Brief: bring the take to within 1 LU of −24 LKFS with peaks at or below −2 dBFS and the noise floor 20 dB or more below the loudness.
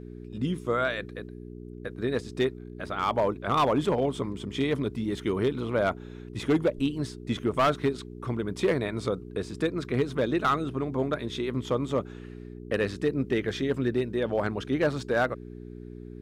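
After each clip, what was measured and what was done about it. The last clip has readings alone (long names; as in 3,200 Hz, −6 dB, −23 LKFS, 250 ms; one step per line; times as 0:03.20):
share of clipped samples 0.6%; peaks flattened at −17.5 dBFS; mains hum 60 Hz; hum harmonics up to 420 Hz; level of the hum −39 dBFS; integrated loudness −28.5 LKFS; sample peak −17.5 dBFS; target loudness −24.0 LKFS
→ clipped peaks rebuilt −17.5 dBFS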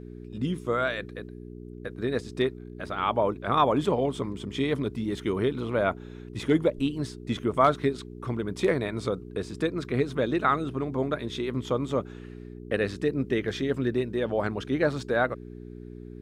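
share of clipped samples 0.0%; mains hum 60 Hz; hum harmonics up to 420 Hz; level of the hum −39 dBFS
→ hum removal 60 Hz, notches 7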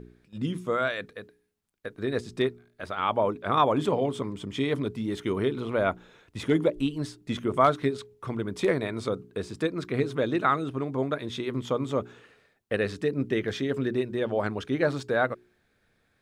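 mains hum none found; integrated loudness −28.5 LKFS; sample peak −8.5 dBFS; target loudness −24.0 LKFS
→ level +4.5 dB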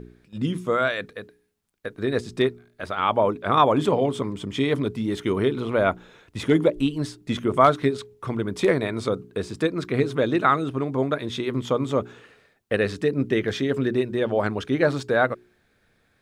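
integrated loudness −24.0 LKFS; sample peak −4.0 dBFS; background noise floor −66 dBFS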